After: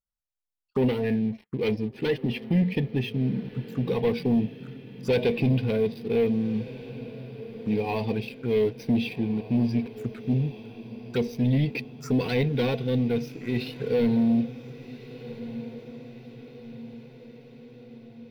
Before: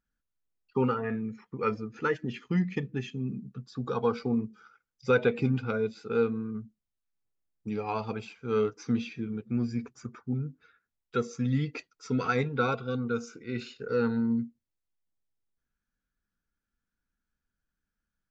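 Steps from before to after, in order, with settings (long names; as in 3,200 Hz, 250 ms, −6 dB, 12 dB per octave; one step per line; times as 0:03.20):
leveller curve on the samples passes 3
phaser swept by the level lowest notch 310 Hz, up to 1,300 Hz, full sweep at −26 dBFS
feedback delay with all-pass diffusion 1,513 ms, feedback 55%, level −15 dB
level −2.5 dB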